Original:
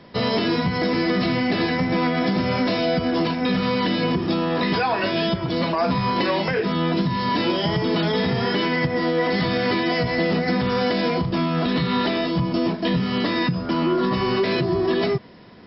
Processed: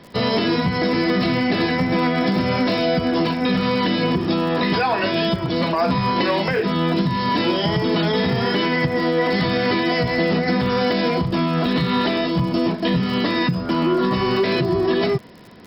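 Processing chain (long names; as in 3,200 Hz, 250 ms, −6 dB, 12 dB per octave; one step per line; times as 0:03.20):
surface crackle 56 per second −35 dBFS
level +2 dB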